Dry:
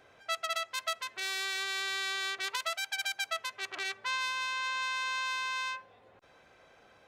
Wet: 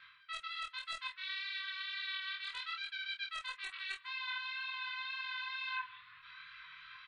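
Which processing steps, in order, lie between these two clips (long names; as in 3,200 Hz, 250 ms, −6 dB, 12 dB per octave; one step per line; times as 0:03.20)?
brick-wall band-stop 170–960 Hz
elliptic low-pass filter 4,100 Hz, stop band 60 dB
tilt shelving filter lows −10 dB, about 770 Hz
reversed playback
downward compressor 10 to 1, threshold −42 dBFS, peak gain reduction 20.5 dB
reversed playback
tape wow and flutter 19 cents
wave folding −33.5 dBFS
multi-voice chorus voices 6, 0.96 Hz, delay 21 ms, depth 3.5 ms
double-tracking delay 26 ms −4.5 dB
slap from a distant wall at 25 metres, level −23 dB
level +6.5 dB
MP3 48 kbit/s 22,050 Hz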